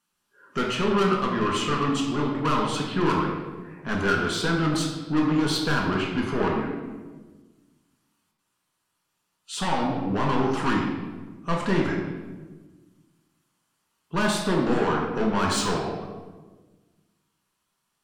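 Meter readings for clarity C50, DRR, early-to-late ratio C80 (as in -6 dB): 2.5 dB, -2.0 dB, 4.5 dB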